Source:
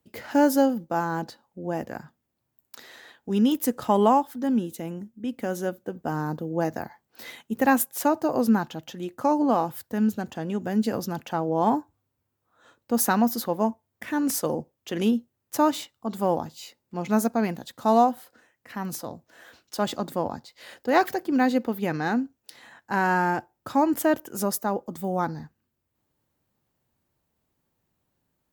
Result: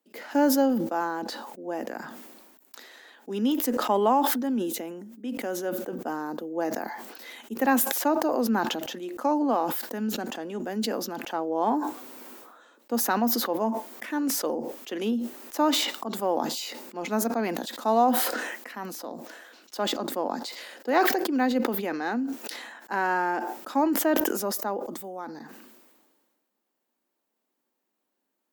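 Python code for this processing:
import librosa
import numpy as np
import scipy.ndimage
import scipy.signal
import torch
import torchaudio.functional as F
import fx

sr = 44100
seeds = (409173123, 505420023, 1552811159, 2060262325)

y = fx.edit(x, sr, fx.fade_out_to(start_s=24.61, length_s=0.79, floor_db=-15.5), tone=tone)
y = scipy.signal.sosfilt(scipy.signal.butter(6, 230.0, 'highpass', fs=sr, output='sos'), y)
y = fx.dynamic_eq(y, sr, hz=9500.0, q=1.0, threshold_db=-49.0, ratio=4.0, max_db=-6)
y = fx.sustainer(y, sr, db_per_s=35.0)
y = F.gain(torch.from_numpy(y), -2.5).numpy()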